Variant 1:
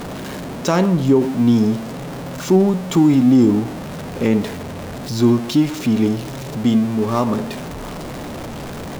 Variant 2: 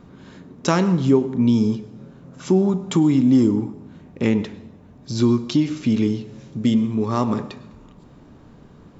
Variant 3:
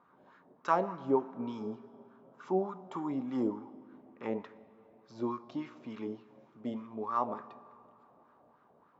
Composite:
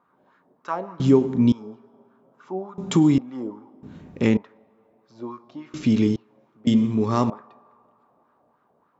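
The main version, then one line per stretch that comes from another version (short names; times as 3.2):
3
1–1.52 from 2
2.78–3.18 from 2
3.83–4.37 from 2
5.74–6.16 from 2
6.67–7.3 from 2
not used: 1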